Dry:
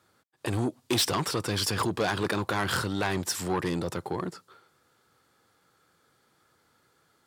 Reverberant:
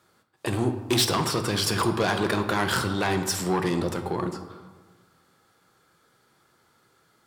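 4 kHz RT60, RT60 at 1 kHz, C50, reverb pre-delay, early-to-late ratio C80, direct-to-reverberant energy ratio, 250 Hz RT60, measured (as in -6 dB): 0.70 s, 1.5 s, 9.0 dB, 3 ms, 11.0 dB, 6.0 dB, 1.5 s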